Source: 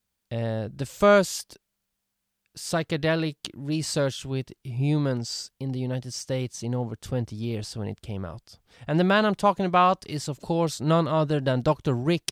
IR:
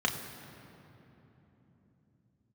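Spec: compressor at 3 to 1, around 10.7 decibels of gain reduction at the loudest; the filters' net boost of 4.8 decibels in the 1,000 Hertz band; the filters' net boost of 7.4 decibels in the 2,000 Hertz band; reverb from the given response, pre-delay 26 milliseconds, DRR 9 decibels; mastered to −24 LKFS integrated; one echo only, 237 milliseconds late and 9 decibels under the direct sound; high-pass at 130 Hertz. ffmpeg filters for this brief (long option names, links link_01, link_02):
-filter_complex "[0:a]highpass=130,equalizer=frequency=1000:width_type=o:gain=3.5,equalizer=frequency=2000:width_type=o:gain=9,acompressor=threshold=-25dB:ratio=3,aecho=1:1:237:0.355,asplit=2[link_01][link_02];[1:a]atrim=start_sample=2205,adelay=26[link_03];[link_02][link_03]afir=irnorm=-1:irlink=0,volume=-18dB[link_04];[link_01][link_04]amix=inputs=2:normalize=0,volume=5dB"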